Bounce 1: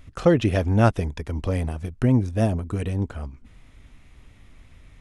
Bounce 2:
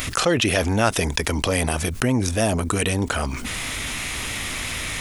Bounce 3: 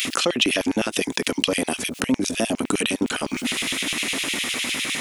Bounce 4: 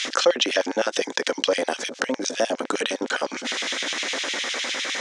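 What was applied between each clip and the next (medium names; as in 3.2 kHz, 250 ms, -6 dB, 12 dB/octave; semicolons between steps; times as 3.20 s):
tilt EQ +3.5 dB/octave; level flattener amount 70%
compression, threshold -21 dBFS, peak gain reduction 8 dB; repeats whose band climbs or falls 437 ms, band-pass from 150 Hz, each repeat 0.7 oct, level -8 dB; LFO high-pass square 9.8 Hz 260–2800 Hz; trim +1.5 dB
cabinet simulation 410–6600 Hz, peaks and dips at 530 Hz +8 dB, 820 Hz +3 dB, 1.6 kHz +6 dB, 2.6 kHz -7 dB, 5.9 kHz +4 dB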